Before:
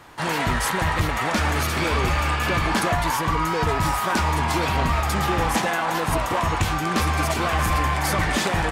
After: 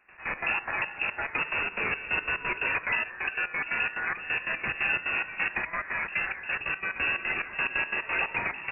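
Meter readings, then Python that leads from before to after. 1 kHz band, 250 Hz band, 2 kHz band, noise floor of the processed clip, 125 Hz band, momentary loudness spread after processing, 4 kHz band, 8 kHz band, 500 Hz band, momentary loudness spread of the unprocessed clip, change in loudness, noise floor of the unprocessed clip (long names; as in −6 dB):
−14.0 dB, −19.5 dB, −1.0 dB, −43 dBFS, −25.0 dB, 4 LU, −11.0 dB, below −40 dB, −14.5 dB, 2 LU, −6.5 dB, −25 dBFS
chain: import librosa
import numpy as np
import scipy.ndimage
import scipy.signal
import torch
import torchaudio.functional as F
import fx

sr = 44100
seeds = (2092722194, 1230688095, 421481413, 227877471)

y = fx.freq_invert(x, sr, carrier_hz=2700)
y = fx.step_gate(y, sr, bpm=178, pattern='.x.x.xx.xx..x', floor_db=-12.0, edge_ms=4.5)
y = y * librosa.db_to_amplitude(-6.5)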